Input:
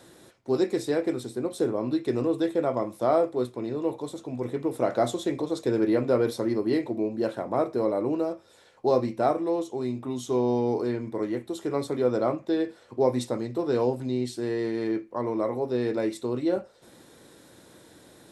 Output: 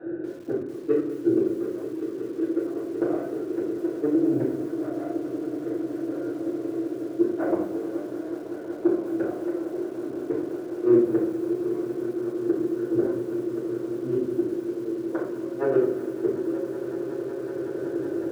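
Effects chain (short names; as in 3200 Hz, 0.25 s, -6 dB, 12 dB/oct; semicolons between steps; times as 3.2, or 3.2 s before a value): Wiener smoothing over 41 samples; dynamic EQ 690 Hz, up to +4 dB, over -43 dBFS, Q 6.3; in parallel at -1 dB: compressor 12:1, threshold -32 dBFS, peak gain reduction 16 dB; on the sum: tremolo 0.61 Hz, depth 60%; soft clip -10.5 dBFS, distortion -25 dB; flipped gate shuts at -24 dBFS, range -27 dB; speaker cabinet 180–2300 Hz, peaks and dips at 230 Hz -9 dB, 330 Hz +10 dB, 820 Hz -3 dB, 1500 Hz +8 dB; on a send: swelling echo 0.186 s, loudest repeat 8, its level -15 dB; on the sum: shoebox room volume 85 m³, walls mixed, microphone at 3.1 m; lo-fi delay 0.21 s, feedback 35%, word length 7-bit, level -13.5 dB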